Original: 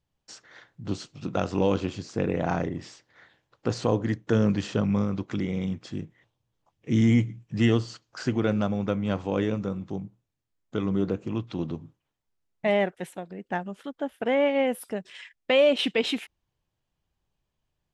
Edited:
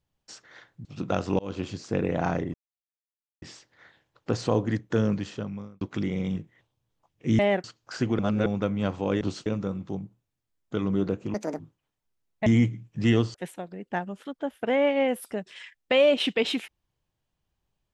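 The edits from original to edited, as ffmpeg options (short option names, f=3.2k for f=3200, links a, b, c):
-filter_complex "[0:a]asplit=16[a][b][c][d][e][f][g][h][i][j][k][l][m][n][o][p];[a]atrim=end=0.852[q];[b]atrim=start=1.098:end=1.64,asetpts=PTS-STARTPTS,afade=t=out:st=0.538:d=0.004:c=hsin[r];[c]atrim=start=1.64:end=2.79,asetpts=PTS-STARTPTS,afade=t=in:d=0.28,afade=t=out:st=1.146:d=0.004:c=hsin,apad=pad_dur=0.88[s];[d]atrim=start=2.79:end=5.18,asetpts=PTS-STARTPTS,afade=t=in:d=0.004:c=hsin,afade=t=out:st=1.4:d=0.99[t];[e]atrim=start=5.18:end=5.742,asetpts=PTS-STARTPTS,afade=t=in:d=0.004:c=hsin[u];[f]atrim=start=5.998:end=7.022[v];[g]atrim=start=12.678:end=12.932[w];[h]atrim=start=7.898:end=8.452[x];[i]atrim=start=8.448:end=8.722,asetpts=PTS-STARTPTS,areverse[y];[j]atrim=start=8.718:end=9.472[z];[k]atrim=start=0.848:end=1.102[aa];[l]atrim=start=9.468:end=11.354[ab];[m]atrim=start=11.35:end=11.81,asetpts=PTS-STARTPTS,asetrate=80262,aresample=44100,atrim=end_sample=11146,asetpts=PTS-STARTPTS[ac];[n]atrim=start=11.806:end=12.682[ad];[o]atrim=start=7.018:end=7.902[ae];[p]atrim=start=12.928[af];[r][s][t][u]concat=n=4:v=0:a=1[ag];[q][ag]acrossfade=d=0.004:c1=hsin:c2=hsin[ah];[ah][v]acrossfade=d=0.004:c1=hsin:c2=hsin[ai];[ai][w]acrossfade=d=0.004:c1=hsin:c2=hsin[aj];[aj][x]acrossfade=d=0.004:c1=hsin:c2=hsin[ak];[ak][y]acrossfade=d=0.004:c1=hsin:c2=hsin[al];[al][z]acrossfade=d=0.004:c1=hsin:c2=hsin[am];[am][aa]acrossfade=d=0.004:c1=hsin:c2=hsin[an];[an][ab]acrossfade=d=0.004:c1=hsin:c2=hsin[ao];[ao][ac]acrossfade=d=0.004:c1=hsin:c2=hsin[ap];[ap][ad]acrossfade=d=0.004:c1=hsin:c2=hsin[aq];[aq][ae]acrossfade=d=0.004:c1=hsin:c2=hsin[ar];[ar][af]acrossfade=d=0.004:c1=hsin:c2=hsin"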